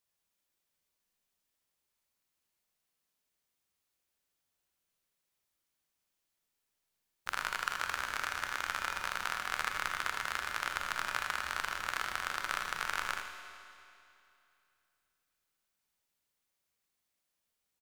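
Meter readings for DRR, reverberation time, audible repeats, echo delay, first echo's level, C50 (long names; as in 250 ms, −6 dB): 3.5 dB, 2.7 s, 1, 80 ms, −9.5 dB, 4.0 dB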